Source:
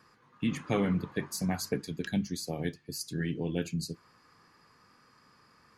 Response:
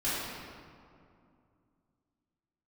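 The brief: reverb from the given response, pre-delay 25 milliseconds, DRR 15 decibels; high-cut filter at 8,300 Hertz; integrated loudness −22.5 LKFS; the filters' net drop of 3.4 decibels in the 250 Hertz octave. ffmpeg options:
-filter_complex "[0:a]lowpass=8300,equalizer=frequency=250:width_type=o:gain=-5,asplit=2[link_01][link_02];[1:a]atrim=start_sample=2205,adelay=25[link_03];[link_02][link_03]afir=irnorm=-1:irlink=0,volume=-24dB[link_04];[link_01][link_04]amix=inputs=2:normalize=0,volume=13dB"

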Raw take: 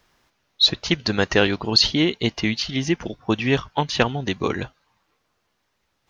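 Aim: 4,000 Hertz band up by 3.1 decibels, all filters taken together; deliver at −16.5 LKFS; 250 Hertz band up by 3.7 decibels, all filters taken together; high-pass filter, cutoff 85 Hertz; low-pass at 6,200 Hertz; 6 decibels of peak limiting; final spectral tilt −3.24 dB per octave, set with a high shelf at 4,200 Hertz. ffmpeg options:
ffmpeg -i in.wav -af "highpass=85,lowpass=6200,equalizer=frequency=250:width_type=o:gain=5,equalizer=frequency=4000:width_type=o:gain=8.5,highshelf=frequency=4200:gain=-8.5,volume=4dB,alimiter=limit=-2.5dB:level=0:latency=1" out.wav

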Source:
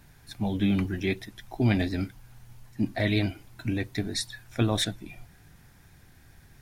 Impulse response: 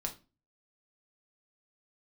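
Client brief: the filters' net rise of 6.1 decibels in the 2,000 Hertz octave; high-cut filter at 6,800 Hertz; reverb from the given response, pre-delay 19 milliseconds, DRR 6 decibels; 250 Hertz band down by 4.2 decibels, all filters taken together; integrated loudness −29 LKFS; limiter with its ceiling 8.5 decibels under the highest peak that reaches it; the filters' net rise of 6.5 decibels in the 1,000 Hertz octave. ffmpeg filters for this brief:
-filter_complex "[0:a]lowpass=6800,equalizer=frequency=250:width_type=o:gain=-6,equalizer=frequency=1000:width_type=o:gain=8.5,equalizer=frequency=2000:width_type=o:gain=5,alimiter=limit=-19dB:level=0:latency=1,asplit=2[link_01][link_02];[1:a]atrim=start_sample=2205,adelay=19[link_03];[link_02][link_03]afir=irnorm=-1:irlink=0,volume=-6.5dB[link_04];[link_01][link_04]amix=inputs=2:normalize=0,volume=2dB"

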